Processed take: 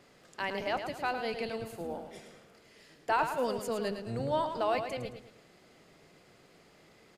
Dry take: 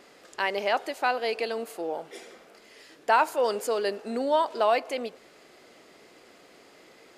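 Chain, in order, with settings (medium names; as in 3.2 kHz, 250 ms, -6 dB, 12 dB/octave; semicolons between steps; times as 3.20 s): octave divider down 1 oct, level +2 dB; feedback delay 109 ms, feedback 37%, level -8 dB; trim -7.5 dB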